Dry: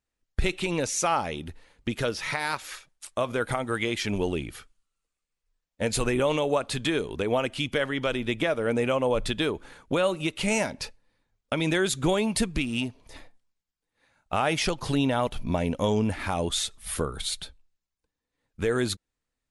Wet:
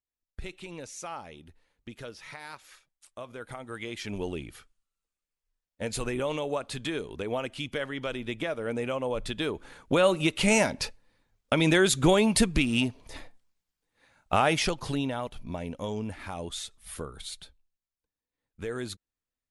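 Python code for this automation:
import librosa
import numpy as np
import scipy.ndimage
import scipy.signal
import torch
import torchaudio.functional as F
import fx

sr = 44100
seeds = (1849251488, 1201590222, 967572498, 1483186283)

y = fx.gain(x, sr, db=fx.line((3.38, -14.0), (4.24, -6.0), (9.24, -6.0), (10.09, 3.0), (14.34, 3.0), (15.29, -9.0)))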